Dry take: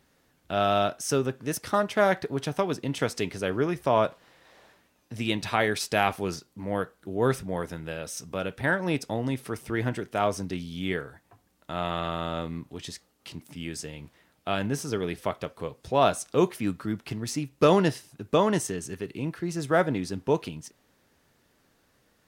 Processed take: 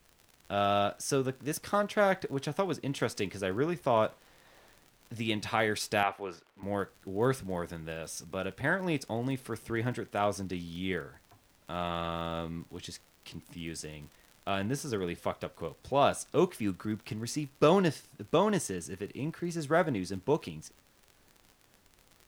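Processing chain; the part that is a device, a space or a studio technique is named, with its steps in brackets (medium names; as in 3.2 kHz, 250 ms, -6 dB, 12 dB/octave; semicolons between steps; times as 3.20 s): gate with hold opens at -55 dBFS; vinyl LP (crackle 50 per s -37 dBFS; pink noise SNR 33 dB); 6.03–6.63 s: three-band isolator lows -15 dB, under 370 Hz, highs -15 dB, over 3 kHz; trim -4 dB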